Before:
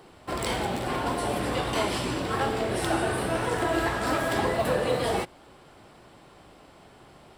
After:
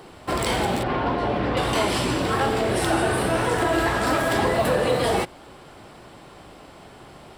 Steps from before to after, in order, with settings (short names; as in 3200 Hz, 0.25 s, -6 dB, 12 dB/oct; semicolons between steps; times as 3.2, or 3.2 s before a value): in parallel at +2 dB: limiter -22.5 dBFS, peak gain reduction 8.5 dB; 0.83–1.57 on the sum: air absorption 240 m